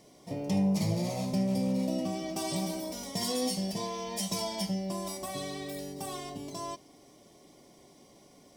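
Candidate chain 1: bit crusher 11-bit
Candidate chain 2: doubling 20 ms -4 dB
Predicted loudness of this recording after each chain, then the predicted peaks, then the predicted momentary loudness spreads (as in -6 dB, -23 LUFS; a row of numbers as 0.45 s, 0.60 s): -33.0 LUFS, -30.5 LUFS; -19.0 dBFS, -16.0 dBFS; 10 LU, 13 LU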